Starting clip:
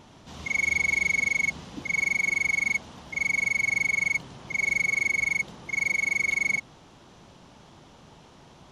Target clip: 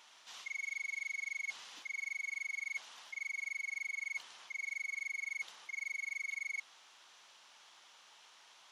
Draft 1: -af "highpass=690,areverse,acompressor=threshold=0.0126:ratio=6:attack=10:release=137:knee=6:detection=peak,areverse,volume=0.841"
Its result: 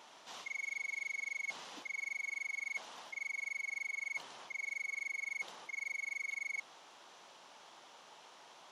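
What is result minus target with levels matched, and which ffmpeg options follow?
500 Hz band +11.5 dB
-af "highpass=1500,areverse,acompressor=threshold=0.0126:ratio=6:attack=10:release=137:knee=6:detection=peak,areverse,volume=0.841"

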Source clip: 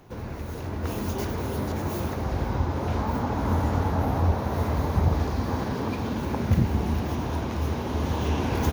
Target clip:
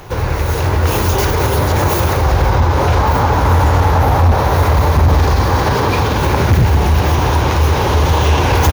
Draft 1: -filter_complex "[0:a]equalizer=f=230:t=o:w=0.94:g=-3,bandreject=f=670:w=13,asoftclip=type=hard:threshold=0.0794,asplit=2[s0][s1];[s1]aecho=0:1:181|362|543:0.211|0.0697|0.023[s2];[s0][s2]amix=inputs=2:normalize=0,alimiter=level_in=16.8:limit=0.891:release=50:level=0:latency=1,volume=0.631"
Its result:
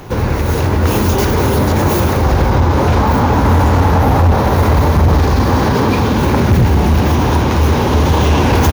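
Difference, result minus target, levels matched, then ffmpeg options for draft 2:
250 Hz band +5.5 dB
-filter_complex "[0:a]equalizer=f=230:t=o:w=0.94:g=-14.5,bandreject=f=670:w=13,asoftclip=type=hard:threshold=0.0794,asplit=2[s0][s1];[s1]aecho=0:1:181|362|543:0.211|0.0697|0.023[s2];[s0][s2]amix=inputs=2:normalize=0,alimiter=level_in=16.8:limit=0.891:release=50:level=0:latency=1,volume=0.631"

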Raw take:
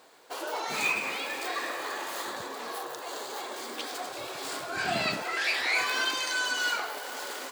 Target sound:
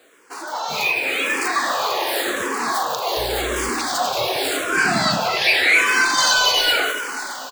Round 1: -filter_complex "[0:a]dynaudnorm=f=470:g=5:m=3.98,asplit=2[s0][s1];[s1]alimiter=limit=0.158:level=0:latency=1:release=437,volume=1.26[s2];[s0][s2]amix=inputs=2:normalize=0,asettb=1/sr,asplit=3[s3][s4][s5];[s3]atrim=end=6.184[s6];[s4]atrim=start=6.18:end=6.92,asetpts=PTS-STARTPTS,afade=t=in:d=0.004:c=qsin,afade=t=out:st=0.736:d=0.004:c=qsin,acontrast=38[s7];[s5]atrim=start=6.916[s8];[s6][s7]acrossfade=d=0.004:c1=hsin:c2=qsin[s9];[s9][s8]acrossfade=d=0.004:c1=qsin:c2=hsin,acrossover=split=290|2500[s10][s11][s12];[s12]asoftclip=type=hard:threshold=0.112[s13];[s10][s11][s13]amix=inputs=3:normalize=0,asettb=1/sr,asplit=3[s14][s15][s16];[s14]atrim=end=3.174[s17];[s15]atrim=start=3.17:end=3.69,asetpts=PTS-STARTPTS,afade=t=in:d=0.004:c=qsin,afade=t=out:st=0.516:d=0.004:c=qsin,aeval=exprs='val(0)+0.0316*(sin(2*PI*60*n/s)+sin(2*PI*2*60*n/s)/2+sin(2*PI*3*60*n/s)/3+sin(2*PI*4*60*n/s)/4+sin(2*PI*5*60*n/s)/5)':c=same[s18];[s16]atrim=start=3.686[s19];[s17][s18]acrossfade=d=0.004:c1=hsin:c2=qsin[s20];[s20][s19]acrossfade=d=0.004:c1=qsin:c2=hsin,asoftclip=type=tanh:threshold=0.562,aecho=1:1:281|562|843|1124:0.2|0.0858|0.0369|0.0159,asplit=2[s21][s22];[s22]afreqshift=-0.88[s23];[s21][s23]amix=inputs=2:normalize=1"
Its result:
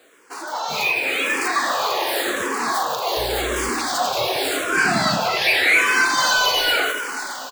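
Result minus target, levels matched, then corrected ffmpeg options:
hard clipper: distortion +21 dB
-filter_complex "[0:a]dynaudnorm=f=470:g=5:m=3.98,asplit=2[s0][s1];[s1]alimiter=limit=0.158:level=0:latency=1:release=437,volume=1.26[s2];[s0][s2]amix=inputs=2:normalize=0,asettb=1/sr,asplit=3[s3][s4][s5];[s3]atrim=end=6.184[s6];[s4]atrim=start=6.18:end=6.92,asetpts=PTS-STARTPTS,afade=t=in:d=0.004:c=qsin,afade=t=out:st=0.736:d=0.004:c=qsin,acontrast=38[s7];[s5]atrim=start=6.916[s8];[s6][s7]acrossfade=d=0.004:c1=hsin:c2=qsin[s9];[s9][s8]acrossfade=d=0.004:c1=qsin:c2=hsin,acrossover=split=290|2500[s10][s11][s12];[s12]asoftclip=type=hard:threshold=0.376[s13];[s10][s11][s13]amix=inputs=3:normalize=0,asettb=1/sr,asplit=3[s14][s15][s16];[s14]atrim=end=3.174[s17];[s15]atrim=start=3.17:end=3.69,asetpts=PTS-STARTPTS,afade=t=in:d=0.004:c=qsin,afade=t=out:st=0.516:d=0.004:c=qsin,aeval=exprs='val(0)+0.0316*(sin(2*PI*60*n/s)+sin(2*PI*2*60*n/s)/2+sin(2*PI*3*60*n/s)/3+sin(2*PI*4*60*n/s)/4+sin(2*PI*5*60*n/s)/5)':c=same[s18];[s16]atrim=start=3.686[s19];[s17][s18]acrossfade=d=0.004:c1=hsin:c2=qsin[s20];[s20][s19]acrossfade=d=0.004:c1=qsin:c2=hsin,asoftclip=type=tanh:threshold=0.562,aecho=1:1:281|562|843|1124:0.2|0.0858|0.0369|0.0159,asplit=2[s21][s22];[s22]afreqshift=-0.88[s23];[s21][s23]amix=inputs=2:normalize=1"

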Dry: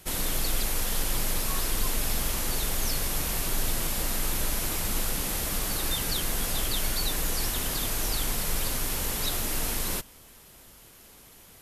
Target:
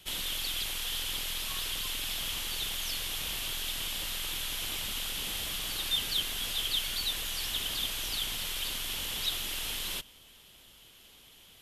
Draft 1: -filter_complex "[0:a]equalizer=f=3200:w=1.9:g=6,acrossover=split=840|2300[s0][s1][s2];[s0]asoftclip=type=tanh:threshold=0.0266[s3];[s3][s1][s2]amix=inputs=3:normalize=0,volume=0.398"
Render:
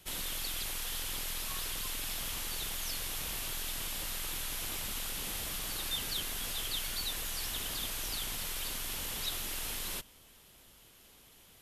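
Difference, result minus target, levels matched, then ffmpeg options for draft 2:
4 kHz band -3.0 dB
-filter_complex "[0:a]equalizer=f=3200:w=1.9:g=15,acrossover=split=840|2300[s0][s1][s2];[s0]asoftclip=type=tanh:threshold=0.0266[s3];[s3][s1][s2]amix=inputs=3:normalize=0,volume=0.398"

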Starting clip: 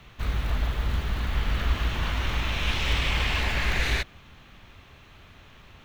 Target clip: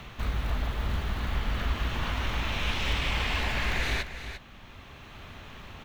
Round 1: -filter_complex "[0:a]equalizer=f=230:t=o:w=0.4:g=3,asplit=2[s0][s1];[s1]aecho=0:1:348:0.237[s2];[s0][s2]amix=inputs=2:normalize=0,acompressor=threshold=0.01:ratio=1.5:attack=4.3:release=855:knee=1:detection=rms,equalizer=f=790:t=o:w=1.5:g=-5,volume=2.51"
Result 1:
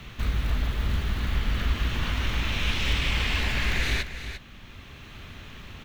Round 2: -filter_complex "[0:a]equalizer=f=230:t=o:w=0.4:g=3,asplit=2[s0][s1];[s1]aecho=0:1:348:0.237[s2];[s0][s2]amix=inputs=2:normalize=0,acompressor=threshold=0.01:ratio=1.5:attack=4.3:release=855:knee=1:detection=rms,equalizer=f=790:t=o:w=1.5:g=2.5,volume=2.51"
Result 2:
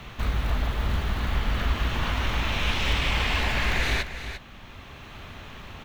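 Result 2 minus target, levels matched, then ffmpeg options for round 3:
compression: peak gain reduction -4 dB
-filter_complex "[0:a]equalizer=f=230:t=o:w=0.4:g=3,asplit=2[s0][s1];[s1]aecho=0:1:348:0.237[s2];[s0][s2]amix=inputs=2:normalize=0,acompressor=threshold=0.00266:ratio=1.5:attack=4.3:release=855:knee=1:detection=rms,equalizer=f=790:t=o:w=1.5:g=2.5,volume=2.51"

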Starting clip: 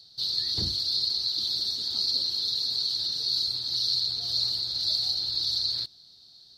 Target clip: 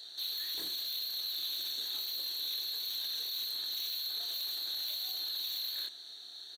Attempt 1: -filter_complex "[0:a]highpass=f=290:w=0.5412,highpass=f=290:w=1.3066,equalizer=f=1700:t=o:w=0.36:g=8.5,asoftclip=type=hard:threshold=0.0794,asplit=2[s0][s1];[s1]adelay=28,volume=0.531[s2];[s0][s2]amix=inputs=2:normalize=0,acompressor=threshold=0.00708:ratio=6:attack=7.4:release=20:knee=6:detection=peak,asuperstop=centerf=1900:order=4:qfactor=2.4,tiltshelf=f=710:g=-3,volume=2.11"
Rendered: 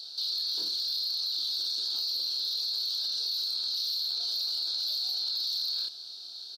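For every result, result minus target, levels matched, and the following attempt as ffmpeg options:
2 kHz band -12.5 dB; hard clipper: distortion -9 dB
-filter_complex "[0:a]highpass=f=290:w=0.5412,highpass=f=290:w=1.3066,equalizer=f=1700:t=o:w=0.36:g=8.5,asoftclip=type=hard:threshold=0.0794,asplit=2[s0][s1];[s1]adelay=28,volume=0.531[s2];[s0][s2]amix=inputs=2:normalize=0,acompressor=threshold=0.00708:ratio=6:attack=7.4:release=20:knee=6:detection=peak,asuperstop=centerf=5000:order=4:qfactor=2.4,tiltshelf=f=710:g=-3,volume=2.11"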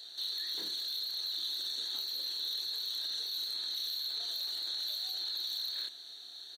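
hard clipper: distortion -9 dB
-filter_complex "[0:a]highpass=f=290:w=0.5412,highpass=f=290:w=1.3066,equalizer=f=1700:t=o:w=0.36:g=8.5,asoftclip=type=hard:threshold=0.0376,asplit=2[s0][s1];[s1]adelay=28,volume=0.531[s2];[s0][s2]amix=inputs=2:normalize=0,acompressor=threshold=0.00708:ratio=6:attack=7.4:release=20:knee=6:detection=peak,asuperstop=centerf=5000:order=4:qfactor=2.4,tiltshelf=f=710:g=-3,volume=2.11"

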